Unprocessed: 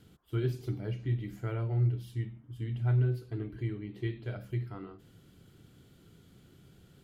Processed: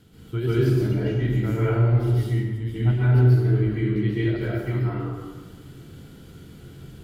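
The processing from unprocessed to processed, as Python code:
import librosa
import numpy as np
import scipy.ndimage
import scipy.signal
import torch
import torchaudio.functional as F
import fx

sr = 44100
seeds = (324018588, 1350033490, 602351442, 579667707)

y = fx.rev_plate(x, sr, seeds[0], rt60_s=1.4, hf_ratio=0.6, predelay_ms=120, drr_db=-9.0)
y = y * librosa.db_to_amplitude(4.0)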